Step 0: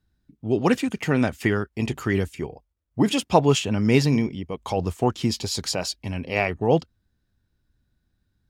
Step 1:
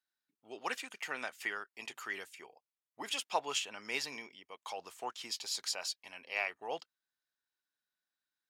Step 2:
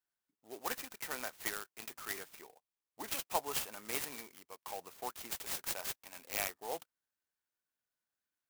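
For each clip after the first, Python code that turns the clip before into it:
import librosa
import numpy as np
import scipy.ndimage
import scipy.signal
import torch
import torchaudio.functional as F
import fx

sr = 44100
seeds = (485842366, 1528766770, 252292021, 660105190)

y1 = scipy.signal.sosfilt(scipy.signal.butter(2, 1000.0, 'highpass', fs=sr, output='sos'), x)
y1 = y1 * 10.0 ** (-8.5 / 20.0)
y2 = fx.clock_jitter(y1, sr, seeds[0], jitter_ms=0.084)
y2 = y2 * 10.0 ** (-1.0 / 20.0)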